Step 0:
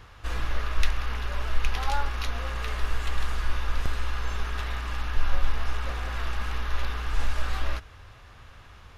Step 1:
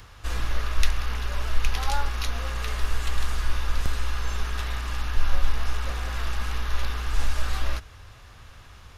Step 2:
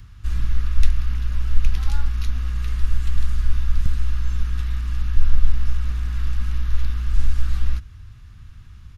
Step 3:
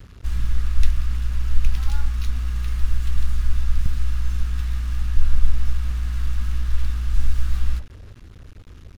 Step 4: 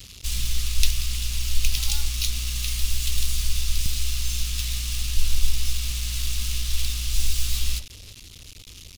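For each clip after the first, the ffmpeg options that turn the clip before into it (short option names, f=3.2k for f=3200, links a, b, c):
-filter_complex "[0:a]bass=f=250:g=2,treble=f=4k:g=7,acrossover=split=340|1100[a][b][c];[c]acompressor=mode=upward:threshold=-54dB:ratio=2.5[d];[a][b][d]amix=inputs=3:normalize=0"
-af "firequalizer=gain_entry='entry(160,0);entry(530,-25);entry(1300,-14)':delay=0.05:min_phase=1,volume=6.5dB"
-filter_complex "[0:a]asplit=2[a][b];[b]adelay=116.6,volume=-19dB,highshelf=f=4k:g=-2.62[c];[a][c]amix=inputs=2:normalize=0,acrusher=bits=6:mix=0:aa=0.5,volume=-1dB"
-af "aexciter=amount=5.3:drive=9.4:freq=2.4k,volume=-5dB"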